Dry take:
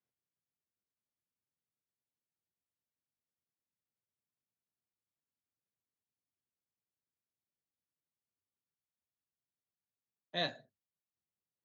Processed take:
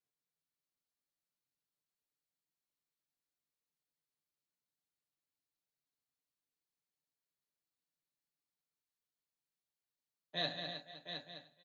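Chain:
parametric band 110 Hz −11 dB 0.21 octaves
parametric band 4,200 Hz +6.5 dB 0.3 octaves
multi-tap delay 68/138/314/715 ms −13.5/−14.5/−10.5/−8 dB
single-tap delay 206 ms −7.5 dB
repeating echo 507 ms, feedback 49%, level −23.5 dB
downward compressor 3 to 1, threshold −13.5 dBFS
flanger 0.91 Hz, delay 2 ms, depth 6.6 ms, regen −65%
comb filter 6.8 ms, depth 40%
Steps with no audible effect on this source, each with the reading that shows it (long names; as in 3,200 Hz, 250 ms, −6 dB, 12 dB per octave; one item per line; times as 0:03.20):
downward compressor, threshold −13.5 dBFS: peak of its input −20.0 dBFS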